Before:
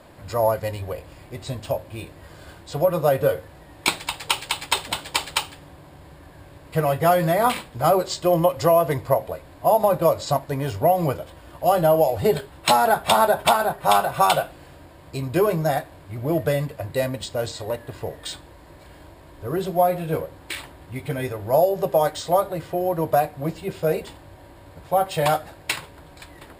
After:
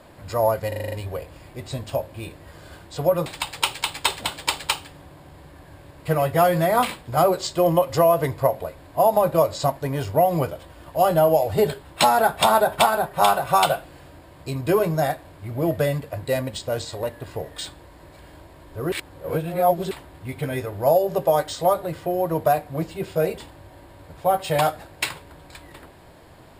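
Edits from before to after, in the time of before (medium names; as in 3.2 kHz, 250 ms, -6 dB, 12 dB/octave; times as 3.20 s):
0.68 s: stutter 0.04 s, 7 plays
3.02–3.93 s: delete
19.59–20.58 s: reverse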